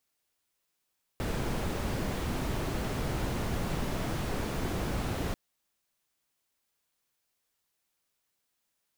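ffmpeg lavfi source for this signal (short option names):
-f lavfi -i "anoisesrc=c=brown:a=0.124:d=4.14:r=44100:seed=1"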